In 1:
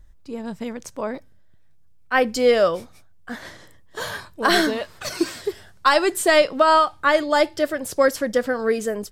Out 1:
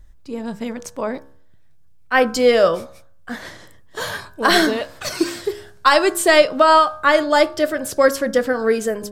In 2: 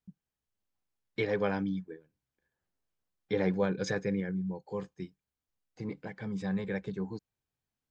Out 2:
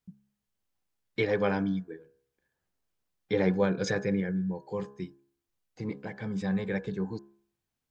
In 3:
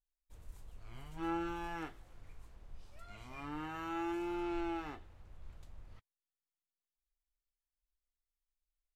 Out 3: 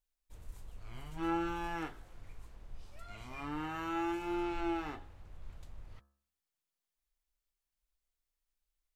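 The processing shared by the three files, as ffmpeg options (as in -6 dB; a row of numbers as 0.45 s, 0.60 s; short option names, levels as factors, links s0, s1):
-af "bandreject=f=68.69:t=h:w=4,bandreject=f=137.38:t=h:w=4,bandreject=f=206.07:t=h:w=4,bandreject=f=274.76:t=h:w=4,bandreject=f=343.45:t=h:w=4,bandreject=f=412.14:t=h:w=4,bandreject=f=480.83:t=h:w=4,bandreject=f=549.52:t=h:w=4,bandreject=f=618.21:t=h:w=4,bandreject=f=686.9:t=h:w=4,bandreject=f=755.59:t=h:w=4,bandreject=f=824.28:t=h:w=4,bandreject=f=892.97:t=h:w=4,bandreject=f=961.66:t=h:w=4,bandreject=f=1030.35:t=h:w=4,bandreject=f=1099.04:t=h:w=4,bandreject=f=1167.73:t=h:w=4,bandreject=f=1236.42:t=h:w=4,bandreject=f=1305.11:t=h:w=4,bandreject=f=1373.8:t=h:w=4,bandreject=f=1442.49:t=h:w=4,bandreject=f=1511.18:t=h:w=4,bandreject=f=1579.87:t=h:w=4,bandreject=f=1648.56:t=h:w=4,bandreject=f=1717.25:t=h:w=4,volume=1.5"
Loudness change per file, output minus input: +3.0 LU, +3.0 LU, +2.5 LU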